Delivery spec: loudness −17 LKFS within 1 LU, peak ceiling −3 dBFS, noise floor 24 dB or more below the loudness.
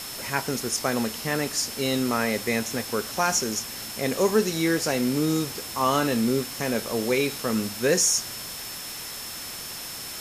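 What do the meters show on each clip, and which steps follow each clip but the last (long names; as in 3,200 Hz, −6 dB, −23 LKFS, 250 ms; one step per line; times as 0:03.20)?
interfering tone 5,300 Hz; level of the tone −40 dBFS; background noise floor −36 dBFS; target noise floor −50 dBFS; integrated loudness −25.5 LKFS; sample peak −8.5 dBFS; target loudness −17.0 LKFS
→ notch filter 5,300 Hz, Q 30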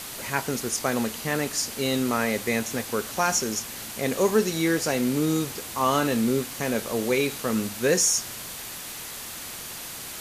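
interfering tone none found; background noise floor −37 dBFS; target noise floor −50 dBFS
→ noise reduction from a noise print 13 dB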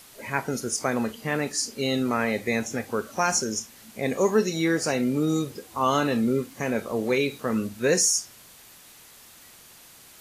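background noise floor −50 dBFS; integrated loudness −25.5 LKFS; sample peak −9.0 dBFS; target loudness −17.0 LKFS
→ level +8.5 dB
brickwall limiter −3 dBFS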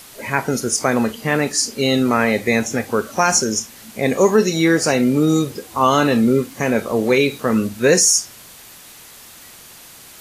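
integrated loudness −17.5 LKFS; sample peak −3.0 dBFS; background noise floor −42 dBFS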